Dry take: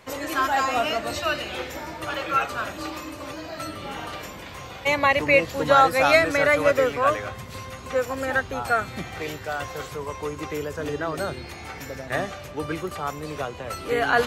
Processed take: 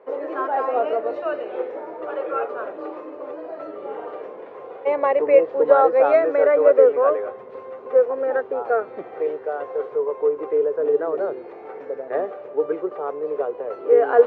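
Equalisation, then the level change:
high-pass with resonance 440 Hz, resonance Q 4.9
low-pass filter 1,100 Hz 12 dB per octave
high-frequency loss of the air 73 metres
−1.0 dB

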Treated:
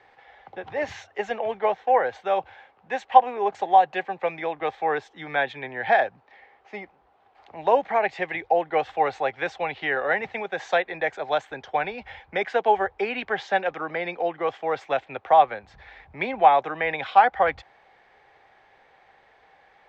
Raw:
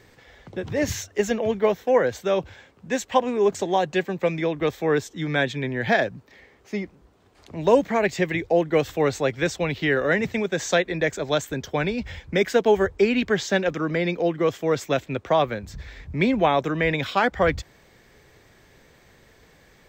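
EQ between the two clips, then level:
high-frequency loss of the air 69 metres
three-way crossover with the lows and the highs turned down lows −17 dB, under 500 Hz, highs −18 dB, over 3,600 Hz
parametric band 790 Hz +13 dB 0.27 octaves
0.0 dB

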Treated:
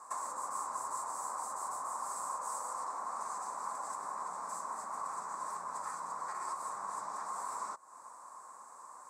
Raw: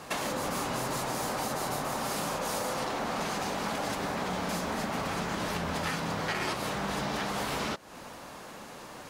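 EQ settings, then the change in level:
pair of resonant band-passes 2,900 Hz, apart 2.9 octaves
+3.0 dB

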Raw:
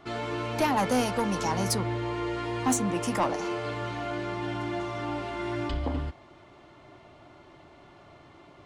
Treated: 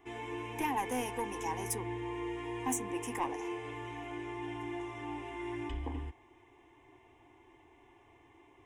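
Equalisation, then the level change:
high-shelf EQ 6,400 Hz +5 dB
phaser with its sweep stopped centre 900 Hz, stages 8
−6.0 dB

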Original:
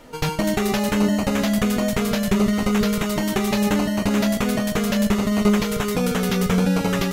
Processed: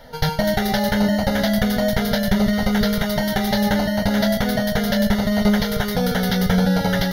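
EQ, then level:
phaser with its sweep stopped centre 1,700 Hz, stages 8
+5.5 dB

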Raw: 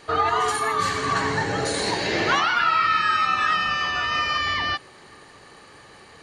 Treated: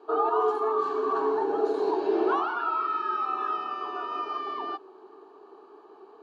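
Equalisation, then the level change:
high-pass with resonance 410 Hz, resonance Q 4.9
low-pass filter 1,600 Hz 12 dB per octave
phaser with its sweep stopped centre 530 Hz, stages 6
−3.5 dB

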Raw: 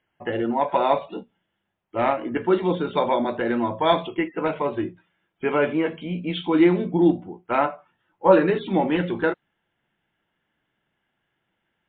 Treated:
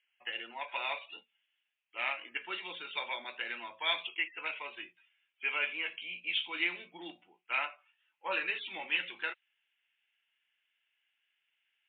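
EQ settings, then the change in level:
resonant band-pass 2,600 Hz, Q 4.4
spectral tilt +2 dB per octave
+3.0 dB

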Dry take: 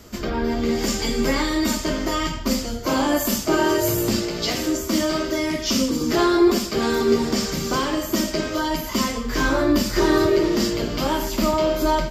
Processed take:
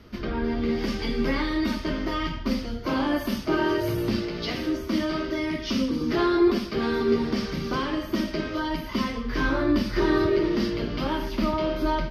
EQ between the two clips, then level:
moving average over 6 samples
parametric band 680 Hz −5 dB 1.2 octaves
−2.5 dB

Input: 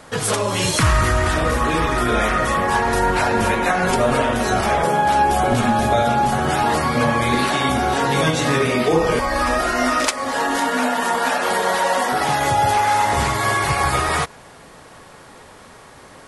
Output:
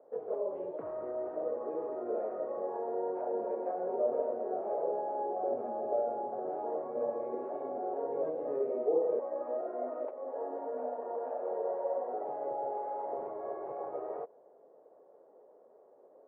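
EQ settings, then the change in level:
flat-topped band-pass 510 Hz, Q 1.8
high-frequency loss of the air 470 metres
−8.5 dB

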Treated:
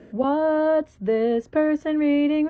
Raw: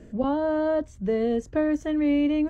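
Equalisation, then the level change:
high-pass filter 370 Hz 6 dB per octave
high-frequency loss of the air 180 metres
+6.5 dB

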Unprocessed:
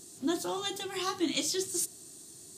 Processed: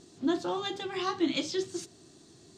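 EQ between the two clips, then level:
high-frequency loss of the air 170 metres
+3.0 dB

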